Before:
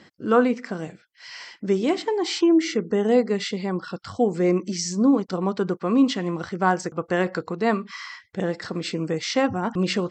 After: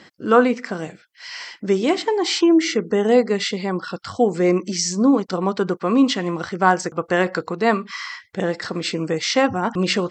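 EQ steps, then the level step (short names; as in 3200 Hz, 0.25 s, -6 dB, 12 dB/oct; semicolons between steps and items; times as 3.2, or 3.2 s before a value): low shelf 380 Hz -5.5 dB; +6.0 dB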